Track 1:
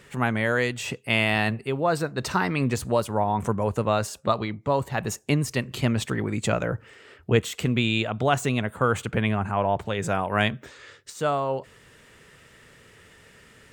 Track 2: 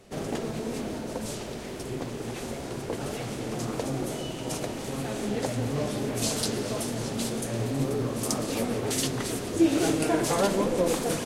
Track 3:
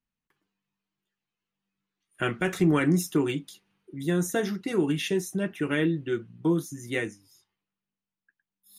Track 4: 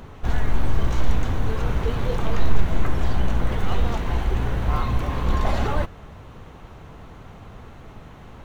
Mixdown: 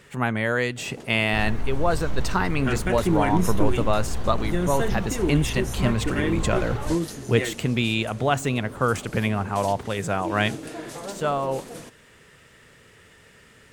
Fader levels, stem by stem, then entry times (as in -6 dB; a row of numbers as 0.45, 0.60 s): 0.0, -11.0, -0.5, -7.5 dB; 0.00, 0.65, 0.45, 1.10 s